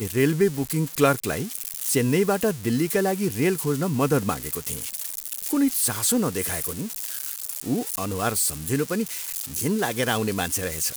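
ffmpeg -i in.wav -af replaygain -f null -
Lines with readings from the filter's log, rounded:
track_gain = +5.0 dB
track_peak = 0.329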